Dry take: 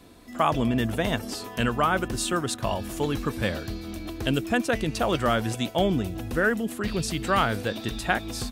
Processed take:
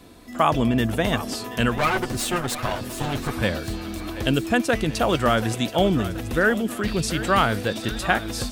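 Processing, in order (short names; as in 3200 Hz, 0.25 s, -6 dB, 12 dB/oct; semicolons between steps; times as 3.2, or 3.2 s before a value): 1.78–3.31 minimum comb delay 8 ms; on a send: thinning echo 0.729 s, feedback 61%, level -13.5 dB; on the sum: gain +3.5 dB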